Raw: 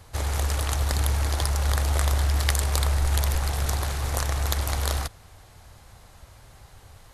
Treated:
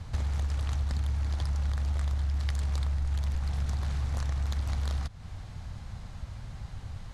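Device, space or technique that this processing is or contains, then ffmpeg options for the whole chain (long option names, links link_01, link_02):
jukebox: -af "lowpass=6100,lowshelf=frequency=280:width_type=q:width=1.5:gain=8.5,acompressor=threshold=-30dB:ratio=5,volume=1dB"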